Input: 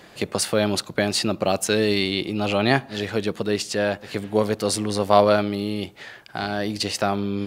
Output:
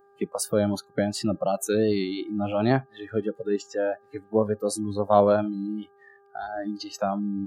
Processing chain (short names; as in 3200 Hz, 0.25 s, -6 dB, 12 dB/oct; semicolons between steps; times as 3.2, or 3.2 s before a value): vibrato 2.8 Hz 39 cents; spectral noise reduction 27 dB; buzz 400 Hz, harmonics 4, -56 dBFS -3 dB/oct; bell 2900 Hz -14.5 dB 2.1 oct